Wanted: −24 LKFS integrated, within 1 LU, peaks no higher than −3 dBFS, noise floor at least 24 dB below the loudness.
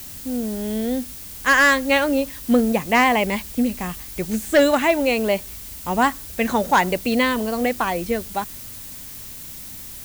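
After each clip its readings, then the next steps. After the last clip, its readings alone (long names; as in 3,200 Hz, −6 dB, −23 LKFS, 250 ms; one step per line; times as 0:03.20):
share of clipped samples 0.6%; peaks flattened at −8.5 dBFS; background noise floor −37 dBFS; target noise floor −45 dBFS; integrated loudness −20.5 LKFS; sample peak −8.5 dBFS; target loudness −24.0 LKFS
→ clipped peaks rebuilt −8.5 dBFS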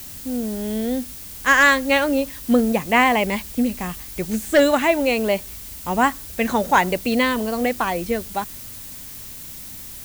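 share of clipped samples 0.0%; background noise floor −37 dBFS; target noise floor −44 dBFS
→ noise reduction from a noise print 7 dB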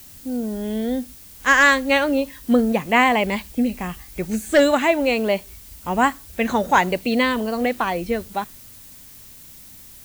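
background noise floor −44 dBFS; integrated loudness −20.0 LKFS; sample peak −1.5 dBFS; target loudness −24.0 LKFS
→ level −4 dB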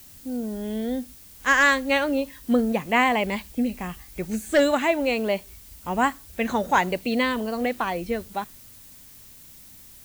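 integrated loudness −24.0 LKFS; sample peak −5.5 dBFS; background noise floor −48 dBFS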